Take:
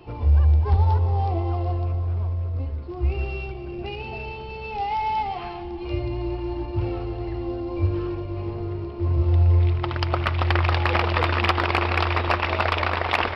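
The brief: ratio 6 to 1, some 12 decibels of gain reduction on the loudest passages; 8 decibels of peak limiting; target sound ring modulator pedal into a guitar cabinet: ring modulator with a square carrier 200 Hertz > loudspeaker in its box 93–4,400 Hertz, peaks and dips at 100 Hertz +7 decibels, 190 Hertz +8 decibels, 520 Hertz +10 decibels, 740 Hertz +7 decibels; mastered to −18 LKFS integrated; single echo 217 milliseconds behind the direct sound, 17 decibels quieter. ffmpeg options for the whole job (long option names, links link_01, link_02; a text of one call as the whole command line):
ffmpeg -i in.wav -af "acompressor=threshold=-27dB:ratio=6,alimiter=limit=-24dB:level=0:latency=1,aecho=1:1:217:0.141,aeval=exprs='val(0)*sgn(sin(2*PI*200*n/s))':channel_layout=same,highpass=93,equalizer=frequency=100:width_type=q:width=4:gain=7,equalizer=frequency=190:width_type=q:width=4:gain=8,equalizer=frequency=520:width_type=q:width=4:gain=10,equalizer=frequency=740:width_type=q:width=4:gain=7,lowpass=frequency=4400:width=0.5412,lowpass=frequency=4400:width=1.3066,volume=10dB" out.wav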